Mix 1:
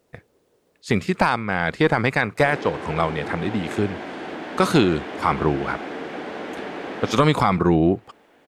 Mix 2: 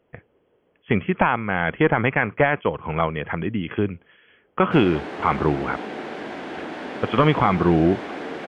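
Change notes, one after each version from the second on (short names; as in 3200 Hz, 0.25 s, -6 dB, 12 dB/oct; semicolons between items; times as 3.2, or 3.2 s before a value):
speech: add brick-wall FIR low-pass 3400 Hz; background: entry +2.30 s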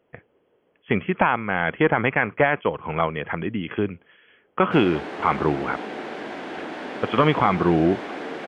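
master: add low shelf 110 Hz -9 dB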